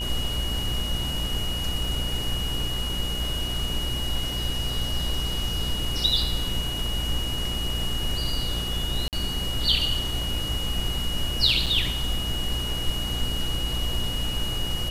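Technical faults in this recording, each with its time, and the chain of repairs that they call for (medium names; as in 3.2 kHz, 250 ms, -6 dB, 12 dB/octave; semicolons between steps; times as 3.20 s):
buzz 60 Hz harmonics 30 -32 dBFS
whine 2.9 kHz -30 dBFS
9.08–9.13 s: dropout 48 ms
11.66–11.67 s: dropout 5.8 ms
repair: de-hum 60 Hz, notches 30; band-stop 2.9 kHz, Q 30; interpolate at 9.08 s, 48 ms; interpolate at 11.66 s, 5.8 ms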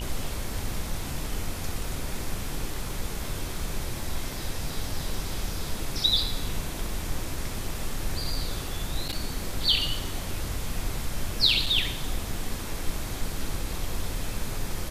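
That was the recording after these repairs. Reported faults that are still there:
nothing left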